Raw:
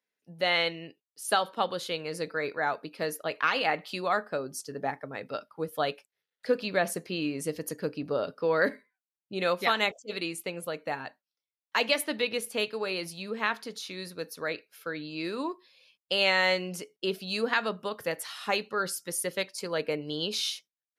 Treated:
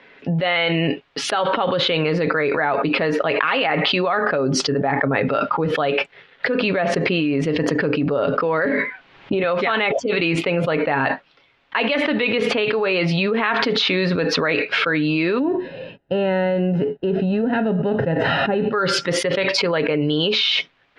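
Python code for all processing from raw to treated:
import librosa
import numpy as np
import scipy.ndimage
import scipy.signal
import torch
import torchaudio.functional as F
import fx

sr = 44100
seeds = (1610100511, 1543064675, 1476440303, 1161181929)

y = fx.chain(x, sr, fx.air_absorb(metres=74.0),
    fx.doubler(ms=29.0, db=-13.5),
    fx.band_squash(depth_pct=100), at=(8.65, 9.44))
y = fx.envelope_flatten(y, sr, power=0.6, at=(15.38, 18.72), fade=0.02)
y = fx.moving_average(y, sr, points=39, at=(15.38, 18.72), fade=0.02)
y = scipy.signal.sosfilt(scipy.signal.butter(4, 3100.0, 'lowpass', fs=sr, output='sos'), y)
y = y + 0.31 * np.pad(y, (int(7.3 * sr / 1000.0), 0))[:len(y)]
y = fx.env_flatten(y, sr, amount_pct=100)
y = y * 10.0 ** (1.5 / 20.0)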